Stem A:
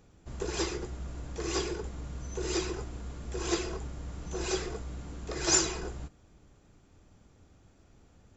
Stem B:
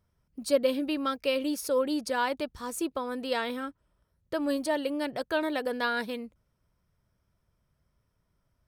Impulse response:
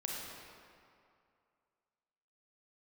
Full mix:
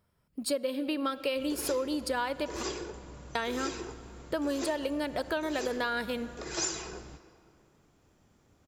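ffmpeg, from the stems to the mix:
-filter_complex "[0:a]adelay=1100,volume=-4.5dB,asplit=2[a][b];[b]volume=-13dB[c];[1:a]bandreject=f=6k:w=5.2,volume=3dB,asplit=3[d][e][f];[d]atrim=end=2.63,asetpts=PTS-STARTPTS,afade=t=out:st=2.626:d=0.004:c=hsin[g];[e]atrim=start=2.63:end=3.35,asetpts=PTS-STARTPTS,volume=0[h];[f]atrim=start=3.35,asetpts=PTS-STARTPTS,afade=t=in:d=0.004:c=hsin[i];[g][h][i]concat=n=3:v=0:a=1,asplit=2[j][k];[k]volume=-16dB[l];[2:a]atrim=start_sample=2205[m];[c][l]amix=inputs=2:normalize=0[n];[n][m]afir=irnorm=-1:irlink=0[o];[a][j][o]amix=inputs=3:normalize=0,lowshelf=f=92:g=-11,acompressor=threshold=-28dB:ratio=6"

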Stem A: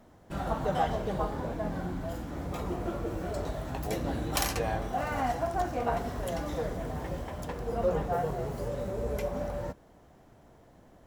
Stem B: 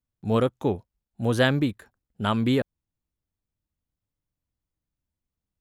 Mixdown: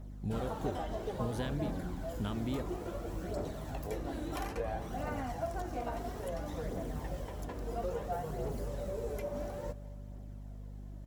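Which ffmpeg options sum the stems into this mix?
-filter_complex "[0:a]acrossover=split=83|190|500|2200[a][b][c][d][e];[a]acompressor=threshold=-46dB:ratio=4[f];[b]acompressor=threshold=-56dB:ratio=4[g];[c]acompressor=threshold=-39dB:ratio=4[h];[d]acompressor=threshold=-32dB:ratio=4[i];[e]acompressor=threshold=-53dB:ratio=4[j];[f][g][h][i][j]amix=inputs=5:normalize=0,aphaser=in_gain=1:out_gain=1:delay=3.4:decay=0.38:speed=0.59:type=triangular,volume=-0.5dB,asplit=2[k][l];[l]volume=-20.5dB[m];[1:a]acompressor=threshold=-33dB:ratio=5,volume=-1dB[n];[m]aecho=0:1:221|442|663|884|1105|1326|1547|1768|1989:1|0.57|0.325|0.185|0.106|0.0602|0.0343|0.0195|0.0111[o];[k][n][o]amix=inputs=3:normalize=0,aeval=exprs='val(0)+0.00631*(sin(2*PI*50*n/s)+sin(2*PI*2*50*n/s)/2+sin(2*PI*3*50*n/s)/3+sin(2*PI*4*50*n/s)/4+sin(2*PI*5*50*n/s)/5)':c=same,equalizer=f=1.2k:t=o:w=2.9:g=-7"

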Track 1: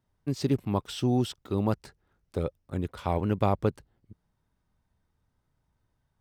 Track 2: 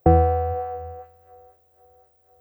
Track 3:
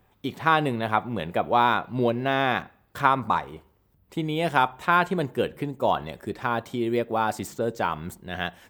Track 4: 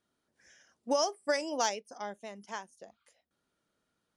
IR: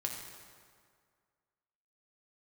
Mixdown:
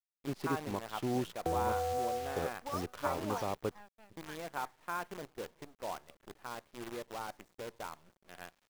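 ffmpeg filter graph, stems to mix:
-filter_complex "[0:a]volume=-4dB[a];[1:a]adelay=1400,volume=-4dB[b];[2:a]highshelf=f=4.1k:g=-10.5,volume=-17dB[c];[3:a]aphaser=in_gain=1:out_gain=1:delay=1.2:decay=0.71:speed=0.68:type=sinusoidal,adelay=1750,volume=-11.5dB[d];[a][b][d]amix=inputs=3:normalize=0,alimiter=limit=-22dB:level=0:latency=1:release=470,volume=0dB[e];[c][e]amix=inputs=2:normalize=0,bass=f=250:g=-8,treble=f=4k:g=-14,acrusher=bits=8:dc=4:mix=0:aa=0.000001"

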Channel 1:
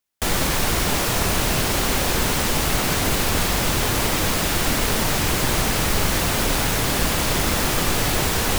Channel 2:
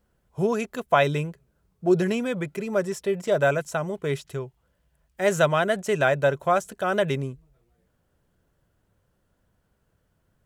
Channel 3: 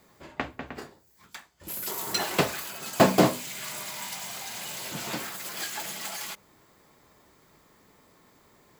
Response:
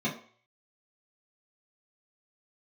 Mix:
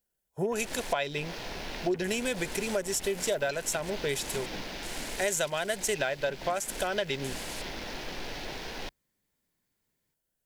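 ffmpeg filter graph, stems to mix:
-filter_complex "[0:a]adelay=300,volume=-14dB[a];[1:a]crystalizer=i=4:c=0,volume=0.5dB,asplit=2[b][c];[2:a]equalizer=f=590:w=0.97:g=-13.5,acompressor=threshold=-38dB:ratio=6,adelay=1350,volume=-3.5dB[d];[c]apad=whole_len=392024[e];[a][e]sidechaincompress=threshold=-20dB:ratio=8:attack=7:release=234[f];[f][b]amix=inputs=2:normalize=0,equalizer=f=91:w=0.66:g=-12,acompressor=threshold=-26dB:ratio=5,volume=0dB[g];[d][g]amix=inputs=2:normalize=0,afwtdn=0.00631,equalizer=f=1.2k:t=o:w=0.35:g=-10"

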